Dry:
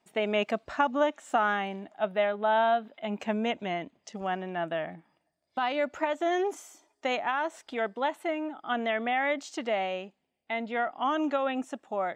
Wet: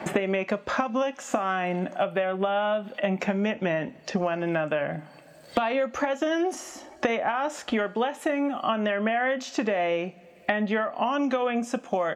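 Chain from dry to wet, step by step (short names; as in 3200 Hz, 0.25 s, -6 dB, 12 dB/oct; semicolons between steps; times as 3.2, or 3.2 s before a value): compressor, threshold -31 dBFS, peak gain reduction 10.5 dB; pitch shift -1.5 st; two-slope reverb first 0.25 s, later 1.8 s, from -27 dB, DRR 11 dB; three-band squash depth 100%; gain +8 dB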